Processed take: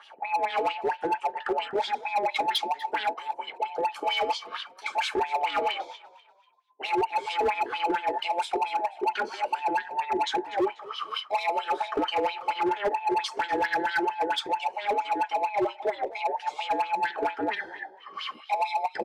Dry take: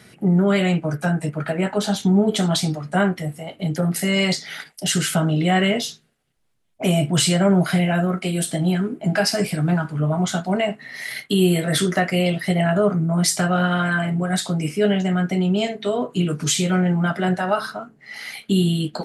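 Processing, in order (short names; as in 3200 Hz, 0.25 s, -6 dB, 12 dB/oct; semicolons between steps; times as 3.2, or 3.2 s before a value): band inversion scrambler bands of 1000 Hz; high shelf 8400 Hz -11 dB; in parallel at +0.5 dB: compressor 6:1, threshold -26 dBFS, peak gain reduction 13 dB; on the sum: sine folder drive 6 dB, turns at -4 dBFS; wah 4.4 Hz 360–3600 Hz, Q 3.5; hard clip -12 dBFS, distortion -12 dB; on a send: frequency-shifting echo 0.244 s, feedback 37%, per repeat +42 Hz, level -19 dB; on the sum: gain -8.5 dB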